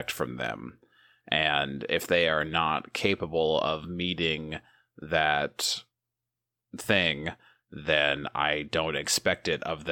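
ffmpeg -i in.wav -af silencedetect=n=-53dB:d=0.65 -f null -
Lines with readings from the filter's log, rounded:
silence_start: 5.84
silence_end: 6.73 | silence_duration: 0.90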